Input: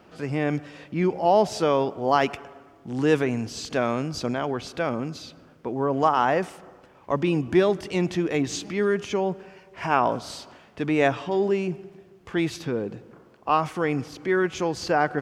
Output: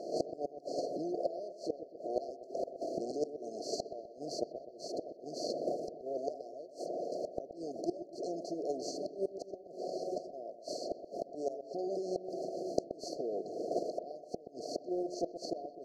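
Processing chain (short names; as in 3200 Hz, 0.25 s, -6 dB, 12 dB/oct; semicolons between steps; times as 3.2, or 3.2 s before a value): per-bin compression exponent 0.4; recorder AGC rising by 51 dB/s; HPF 480 Hz 12 dB/oct; reverb removal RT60 1.5 s; gate -18 dBFS, range -16 dB; high shelf 4900 Hz -10.5 dB; flipped gate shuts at -21 dBFS, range -26 dB; brick-wall FIR band-stop 770–4300 Hz; on a send: dark delay 0.121 s, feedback 49%, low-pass 2300 Hz, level -10.5 dB; on the sum: speed mistake 25 fps video run at 24 fps; gain +3 dB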